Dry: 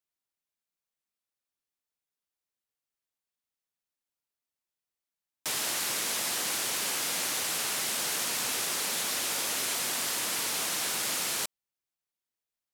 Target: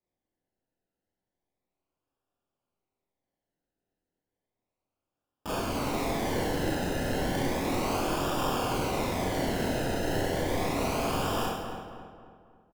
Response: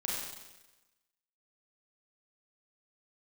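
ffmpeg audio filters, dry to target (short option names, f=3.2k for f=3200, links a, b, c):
-filter_complex "[0:a]asettb=1/sr,asplit=3[a][b][c];[a]atrim=end=5.564[d];[b]atrim=start=5.56:end=6.16,asetpts=PTS-STARTPTS,afade=t=in:d=0.004:c=qsin,afade=t=out:st=0.596:d=0.004:c=qsin,equalizer=f=2k:t=o:w=1:g=10,equalizer=f=4k:t=o:w=1:g=-6,equalizer=f=8k:t=o:w=1:g=-11[e];[c]atrim=start=6.156[f];[d][e]acrossfade=d=0.004:c1=hsin:c2=qsin[g];[g][f]acrossfade=d=0.004:c1=qsin:c2=hsin,acrusher=samples=30:mix=1:aa=0.000001:lfo=1:lforange=18:lforate=0.33,asplit=2[h][i];[i]adelay=271,lowpass=f=2.3k:p=1,volume=-7dB,asplit=2[j][k];[k]adelay=271,lowpass=f=2.3k:p=1,volume=0.46,asplit=2[l][m];[m]adelay=271,lowpass=f=2.3k:p=1,volume=0.46,asplit=2[n][o];[o]adelay=271,lowpass=f=2.3k:p=1,volume=0.46,asplit=2[p][q];[q]adelay=271,lowpass=f=2.3k:p=1,volume=0.46[r];[h][j][l][n][p][r]amix=inputs=6:normalize=0[s];[1:a]atrim=start_sample=2205,asetrate=61740,aresample=44100[t];[s][t]afir=irnorm=-1:irlink=0"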